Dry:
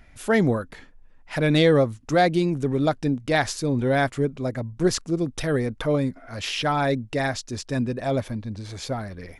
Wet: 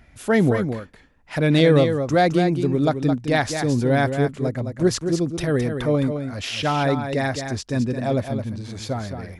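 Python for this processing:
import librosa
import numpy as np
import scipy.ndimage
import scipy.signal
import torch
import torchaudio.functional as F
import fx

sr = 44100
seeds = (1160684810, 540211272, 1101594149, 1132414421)

y = scipy.signal.sosfilt(scipy.signal.butter(2, 42.0, 'highpass', fs=sr, output='sos'), x)
y = fx.low_shelf(y, sr, hz=420.0, db=3.5)
y = y + 10.0 ** (-7.5 / 20.0) * np.pad(y, (int(215 * sr / 1000.0), 0))[:len(y)]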